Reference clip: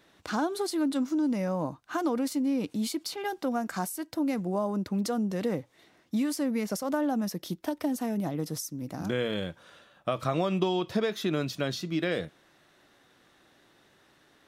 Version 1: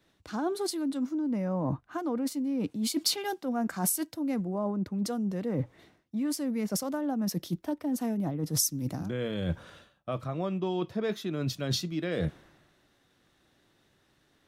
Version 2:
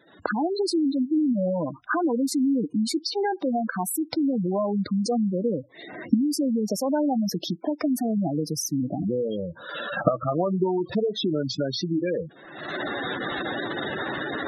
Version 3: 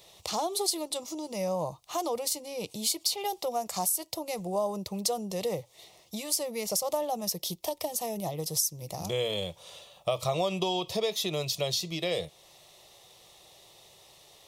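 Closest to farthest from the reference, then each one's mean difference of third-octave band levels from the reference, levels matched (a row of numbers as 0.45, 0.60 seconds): 1, 3, 2; 4.5, 7.0, 14.0 decibels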